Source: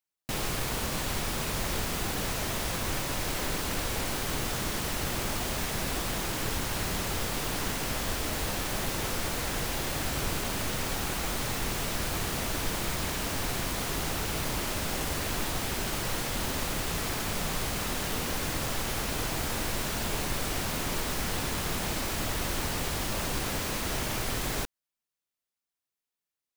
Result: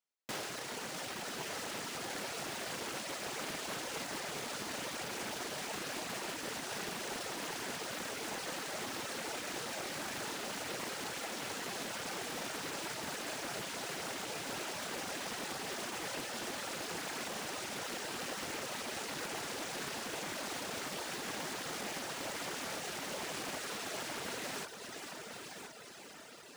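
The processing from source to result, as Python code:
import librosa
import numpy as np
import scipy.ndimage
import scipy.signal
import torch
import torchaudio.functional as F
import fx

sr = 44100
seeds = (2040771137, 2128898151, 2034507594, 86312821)

p1 = fx.peak_eq(x, sr, hz=3600.0, db=-4.0, octaves=0.77)
p2 = fx.notch_comb(p1, sr, f0_hz=1100.0)
p3 = fx.echo_diffused(p2, sr, ms=497, feedback_pct=70, wet_db=-7.0)
p4 = np.repeat(p3[::3], 3)[:len(p3)]
p5 = fx.low_shelf(p4, sr, hz=290.0, db=-5.5)
p6 = p5 + fx.echo_feedback(p5, sr, ms=1022, feedback_pct=37, wet_db=-9, dry=0)
p7 = fx.dereverb_blind(p6, sr, rt60_s=1.7)
p8 = scipy.signal.sosfilt(scipy.signal.butter(2, 160.0, 'highpass', fs=sr, output='sos'), p7)
p9 = fx.doppler_dist(p8, sr, depth_ms=0.6)
y = F.gain(torch.from_numpy(p9), -3.5).numpy()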